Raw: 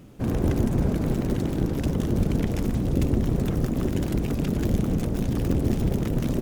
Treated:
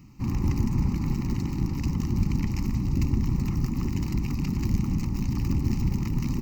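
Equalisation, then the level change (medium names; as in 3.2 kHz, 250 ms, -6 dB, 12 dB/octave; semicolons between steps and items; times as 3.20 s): Butterworth band-stop 650 Hz, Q 2.1; peaking EQ 5 kHz +2.5 dB; static phaser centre 2.3 kHz, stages 8; 0.0 dB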